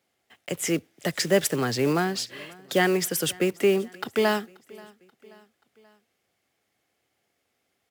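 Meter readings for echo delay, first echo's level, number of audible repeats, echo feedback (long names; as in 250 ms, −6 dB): 532 ms, −24.0 dB, 2, 53%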